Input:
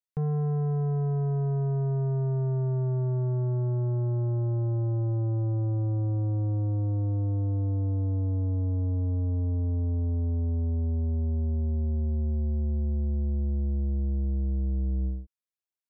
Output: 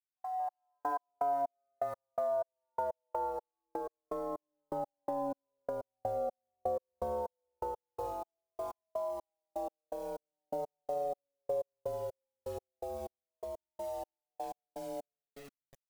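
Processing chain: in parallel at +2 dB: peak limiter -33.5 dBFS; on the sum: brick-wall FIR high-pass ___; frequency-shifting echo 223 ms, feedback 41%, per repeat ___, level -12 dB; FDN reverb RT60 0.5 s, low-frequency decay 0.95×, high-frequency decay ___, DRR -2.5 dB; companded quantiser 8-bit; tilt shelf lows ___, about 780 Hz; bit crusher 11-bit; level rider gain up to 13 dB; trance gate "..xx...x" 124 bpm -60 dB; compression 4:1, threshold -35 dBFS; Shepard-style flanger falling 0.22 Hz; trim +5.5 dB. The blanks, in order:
510 Hz, -150 Hz, 0.55×, +5.5 dB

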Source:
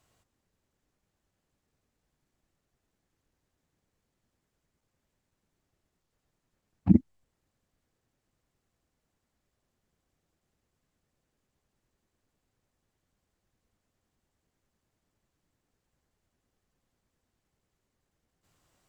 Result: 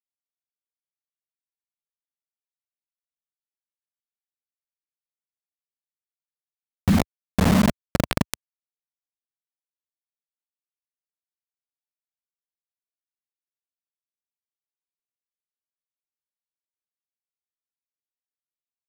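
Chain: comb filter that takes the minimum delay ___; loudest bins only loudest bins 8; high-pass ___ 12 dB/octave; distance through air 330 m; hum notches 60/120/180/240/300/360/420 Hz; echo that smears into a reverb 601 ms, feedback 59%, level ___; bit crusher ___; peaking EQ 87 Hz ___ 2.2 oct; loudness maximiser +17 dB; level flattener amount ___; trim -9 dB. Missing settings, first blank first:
0.7 ms, 44 Hz, -4 dB, 5-bit, +3.5 dB, 50%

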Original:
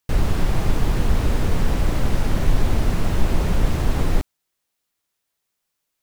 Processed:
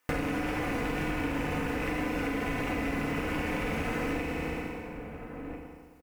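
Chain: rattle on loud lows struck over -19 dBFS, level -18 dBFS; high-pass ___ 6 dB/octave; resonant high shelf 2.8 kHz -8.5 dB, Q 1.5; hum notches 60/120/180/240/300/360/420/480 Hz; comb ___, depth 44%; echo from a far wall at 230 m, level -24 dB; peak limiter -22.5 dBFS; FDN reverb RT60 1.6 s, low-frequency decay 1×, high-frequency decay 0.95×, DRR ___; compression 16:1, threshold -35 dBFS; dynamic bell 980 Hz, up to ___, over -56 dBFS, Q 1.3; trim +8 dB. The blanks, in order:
300 Hz, 4 ms, -3 dB, -3 dB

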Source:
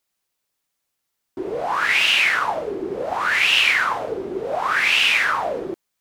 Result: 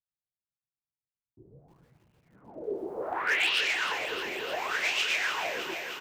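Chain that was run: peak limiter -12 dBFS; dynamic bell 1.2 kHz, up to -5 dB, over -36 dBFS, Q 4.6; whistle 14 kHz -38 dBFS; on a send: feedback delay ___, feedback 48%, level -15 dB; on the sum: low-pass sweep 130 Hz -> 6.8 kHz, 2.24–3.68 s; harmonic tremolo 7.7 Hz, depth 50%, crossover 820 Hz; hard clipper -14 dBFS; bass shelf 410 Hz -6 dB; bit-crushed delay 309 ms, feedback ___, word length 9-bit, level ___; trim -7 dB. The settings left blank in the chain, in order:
128 ms, 80%, -9 dB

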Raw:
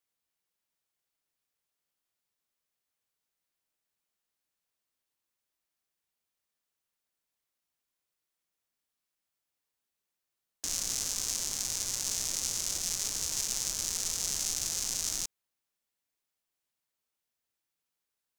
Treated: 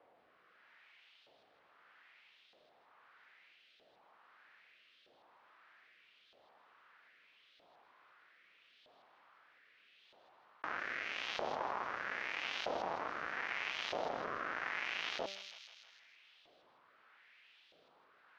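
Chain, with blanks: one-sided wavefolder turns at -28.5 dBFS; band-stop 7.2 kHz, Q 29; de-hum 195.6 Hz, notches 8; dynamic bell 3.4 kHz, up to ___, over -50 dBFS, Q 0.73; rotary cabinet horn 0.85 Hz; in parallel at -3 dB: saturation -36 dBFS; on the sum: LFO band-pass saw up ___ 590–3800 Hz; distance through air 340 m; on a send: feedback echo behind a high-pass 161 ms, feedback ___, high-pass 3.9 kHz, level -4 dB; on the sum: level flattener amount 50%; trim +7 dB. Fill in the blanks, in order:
-3 dB, 0.79 Hz, 38%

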